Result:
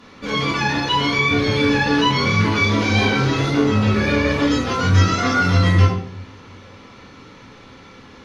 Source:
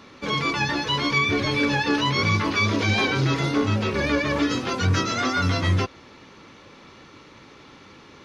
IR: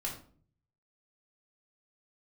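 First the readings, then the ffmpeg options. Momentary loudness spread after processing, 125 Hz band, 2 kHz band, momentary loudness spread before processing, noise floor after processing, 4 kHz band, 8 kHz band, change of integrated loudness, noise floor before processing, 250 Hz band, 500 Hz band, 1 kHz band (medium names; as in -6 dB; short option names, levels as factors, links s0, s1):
4 LU, +6.5 dB, +4.0 dB, 3 LU, -44 dBFS, +3.5 dB, +2.5 dB, +5.0 dB, -48 dBFS, +5.5 dB, +5.0 dB, +5.0 dB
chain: -filter_complex "[1:a]atrim=start_sample=2205,asetrate=30870,aresample=44100[s0];[0:a][s0]afir=irnorm=-1:irlink=0"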